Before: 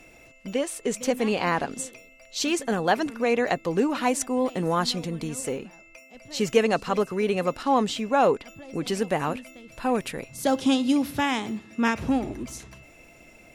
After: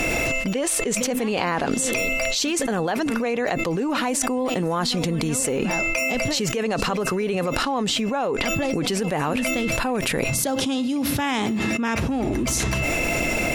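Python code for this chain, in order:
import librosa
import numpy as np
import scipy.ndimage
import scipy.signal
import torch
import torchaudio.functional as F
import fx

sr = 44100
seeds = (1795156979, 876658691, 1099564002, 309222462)

y = fx.env_flatten(x, sr, amount_pct=100)
y = y * 10.0 ** (-8.5 / 20.0)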